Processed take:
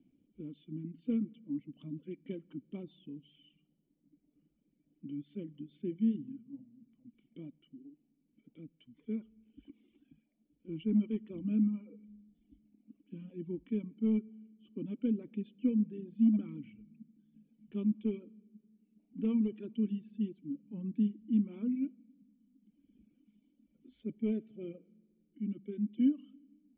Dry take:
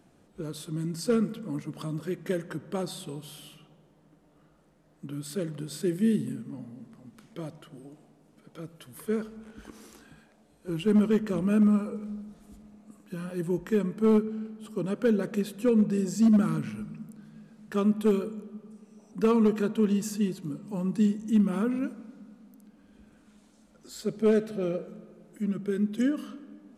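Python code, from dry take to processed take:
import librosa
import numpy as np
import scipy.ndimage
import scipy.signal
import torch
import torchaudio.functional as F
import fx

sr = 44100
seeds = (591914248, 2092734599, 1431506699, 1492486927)

y = fx.dynamic_eq(x, sr, hz=1000.0, q=1.3, threshold_db=-46.0, ratio=4.0, max_db=6)
y = fx.formant_cascade(y, sr, vowel='i')
y = fx.dereverb_blind(y, sr, rt60_s=1.5)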